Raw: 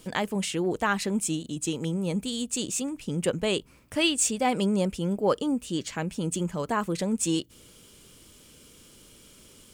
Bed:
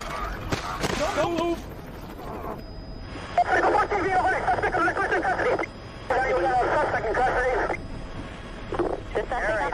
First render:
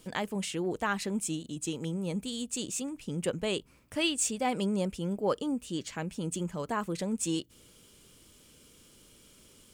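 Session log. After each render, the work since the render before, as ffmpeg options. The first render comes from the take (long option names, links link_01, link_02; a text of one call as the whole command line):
ffmpeg -i in.wav -af "volume=-5dB" out.wav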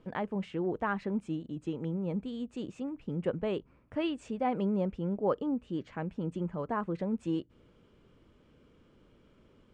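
ffmpeg -i in.wav -af "lowpass=1500" out.wav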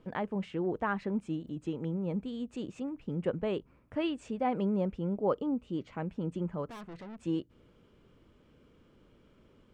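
ffmpeg -i in.wav -filter_complex "[0:a]asettb=1/sr,asplit=3[link_01][link_02][link_03];[link_01]atrim=end=1.474[link_04];[link_02]atrim=start=1.47:end=2.95,asetpts=PTS-STARTPTS,afade=type=in:duration=0.004:curve=qsin,afade=type=out:start_time=1.476:duration=0.004:curve=qsin,acompressor=mode=upward:threshold=-45dB:ratio=2.5:attack=3.2:release=140:knee=2.83:detection=peak[link_05];[link_03]atrim=start=2.946[link_06];[link_04][link_05]acrossfade=duration=0.004:curve1=hsin:curve2=qsin[link_07];[link_07][link_06]acrossfade=duration=0.004:curve1=qsin:curve2=hsin,asettb=1/sr,asplit=3[link_08][link_09][link_10];[link_08]atrim=end=5.024[link_11];[link_09]atrim=start=5.02:end=6,asetpts=PTS-STARTPTS,afade=type=in:duration=0.004:curve=qsin,afade=type=out:start_time=0.976:duration=0.004:curve=qsin,bandreject=frequency=1700:width=5.5[link_12];[link_10]atrim=start=5.996[link_13];[link_11][link_12]acrossfade=duration=0.004:curve1=hsin:curve2=qsin[link_14];[link_14][link_13]acrossfade=duration=0.004:curve1=qsin:curve2=hsin,asettb=1/sr,asplit=3[link_15][link_16][link_17];[link_15]atrim=end=6.694[link_18];[link_16]atrim=start=6.69:end=7.2,asetpts=PTS-STARTPTS,afade=type=in:duration=0.004:curve=qsin,afade=type=out:start_time=0.506:duration=0.004:curve=qsin,aeval=exprs='(tanh(141*val(0)+0.35)-tanh(0.35))/141':channel_layout=same[link_19];[link_17]atrim=start=7.196[link_20];[link_18][link_19]acrossfade=duration=0.004:curve1=hsin:curve2=qsin[link_21];[link_21][link_20]acrossfade=duration=0.004:curve1=qsin:curve2=hsin" out.wav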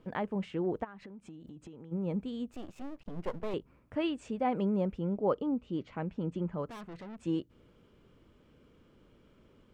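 ffmpeg -i in.wav -filter_complex "[0:a]asplit=3[link_01][link_02][link_03];[link_01]afade=type=out:start_time=0.83:duration=0.02[link_04];[link_02]acompressor=threshold=-44dB:ratio=20:attack=3.2:release=140:knee=1:detection=peak,afade=type=in:start_time=0.83:duration=0.02,afade=type=out:start_time=1.91:duration=0.02[link_05];[link_03]afade=type=in:start_time=1.91:duration=0.02[link_06];[link_04][link_05][link_06]amix=inputs=3:normalize=0,asettb=1/sr,asplit=3[link_07][link_08][link_09];[link_07]atrim=end=2.524[link_10];[link_08]atrim=start=2.52:end=3.54,asetpts=PTS-STARTPTS,afade=type=in:duration=0.004:curve=qsin,afade=type=out:start_time=1.016:duration=0.004:curve=qsin,aeval=exprs='max(val(0),0)':channel_layout=same[link_11];[link_09]atrim=start=3.536[link_12];[link_10][link_11]acrossfade=duration=0.004:curve1=hsin:curve2=qsin[link_13];[link_13][link_12]acrossfade=duration=0.004:curve1=qsin:curve2=hsin,asettb=1/sr,asplit=3[link_14][link_15][link_16];[link_14]atrim=end=5.014[link_17];[link_15]atrim=start=5.01:end=6.62,asetpts=PTS-STARTPTS,afade=type=in:duration=0.004:curve=qsin,afade=type=out:start_time=1.606:duration=0.004:curve=qsin,lowpass=6200[link_18];[link_16]atrim=start=6.616[link_19];[link_17][link_18]acrossfade=duration=0.004:curve1=hsin:curve2=qsin[link_20];[link_20][link_19]acrossfade=duration=0.004:curve1=qsin:curve2=hsin" out.wav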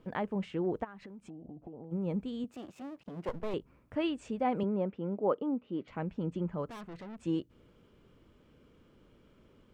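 ffmpeg -i in.wav -filter_complex "[0:a]asettb=1/sr,asplit=3[link_01][link_02][link_03];[link_01]atrim=end=1.304[link_04];[link_02]atrim=start=1.3:end=1.91,asetpts=PTS-STARTPTS,afade=type=in:duration=0.004:curve=qsin,afade=type=out:start_time=0.606:duration=0.004:curve=qsin,lowpass=frequency=720:width_type=q:width=7.2[link_05];[link_03]atrim=start=1.906[link_06];[link_04][link_05]acrossfade=duration=0.004:curve1=hsin:curve2=qsin[link_07];[link_07][link_06]acrossfade=duration=0.004:curve1=qsin:curve2=hsin,asettb=1/sr,asplit=3[link_08][link_09][link_10];[link_08]atrim=end=2.444[link_11];[link_09]atrim=start=2.44:end=3.29,asetpts=PTS-STARTPTS,afade=type=in:duration=0.004:curve=qsin,afade=type=out:start_time=0.846:duration=0.004:curve=qsin,highpass=130[link_12];[link_10]atrim=start=3.286[link_13];[link_11][link_12]acrossfade=duration=0.004:curve1=hsin:curve2=qsin[link_14];[link_14][link_13]acrossfade=duration=0.004:curve1=qsin:curve2=hsin,asettb=1/sr,asplit=3[link_15][link_16][link_17];[link_15]atrim=end=4.634[link_18];[link_16]atrim=start=4.63:end=5.88,asetpts=PTS-STARTPTS,afade=type=in:duration=0.004:curve=qsin,afade=type=out:start_time=1.246:duration=0.004:curve=qsin,highpass=200,lowpass=2700[link_19];[link_17]atrim=start=5.876[link_20];[link_18][link_19]acrossfade=duration=0.004:curve1=hsin:curve2=qsin[link_21];[link_21][link_20]acrossfade=duration=0.004:curve1=qsin:curve2=hsin" out.wav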